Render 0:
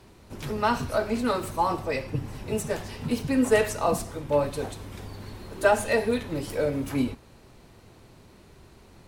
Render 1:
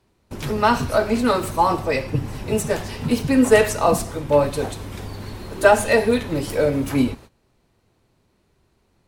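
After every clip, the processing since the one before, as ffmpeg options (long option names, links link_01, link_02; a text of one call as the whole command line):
ffmpeg -i in.wav -af "agate=range=-19dB:threshold=-46dB:ratio=16:detection=peak,volume=7dB" out.wav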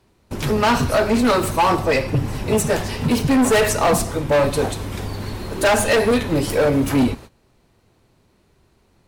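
ffmpeg -i in.wav -af "asoftclip=type=hard:threshold=-17.5dB,volume=5dB" out.wav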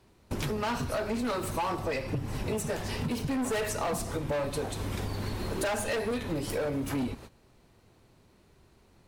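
ffmpeg -i in.wav -af "acompressor=threshold=-27dB:ratio=10,volume=-2dB" out.wav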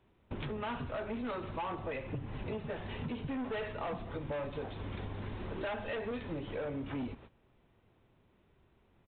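ffmpeg -i in.wav -af "aresample=8000,aresample=44100,volume=-7dB" out.wav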